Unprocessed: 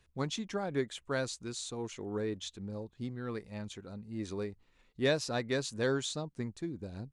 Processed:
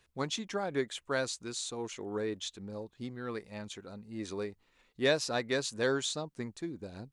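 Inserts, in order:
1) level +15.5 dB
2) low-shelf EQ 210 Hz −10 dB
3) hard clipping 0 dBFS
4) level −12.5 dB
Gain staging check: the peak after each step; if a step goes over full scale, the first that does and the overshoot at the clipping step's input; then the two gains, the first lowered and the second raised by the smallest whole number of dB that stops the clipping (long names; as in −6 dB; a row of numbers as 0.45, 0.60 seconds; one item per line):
−2.0, −3.0, −3.0, −15.5 dBFS
no step passes full scale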